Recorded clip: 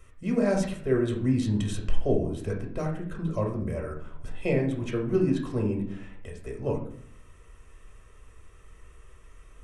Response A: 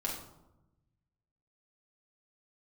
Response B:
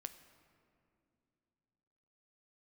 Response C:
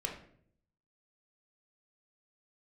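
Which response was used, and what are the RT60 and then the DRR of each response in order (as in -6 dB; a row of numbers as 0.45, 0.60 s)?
C; 0.95, 2.7, 0.60 s; -3.5, 9.0, 0.5 dB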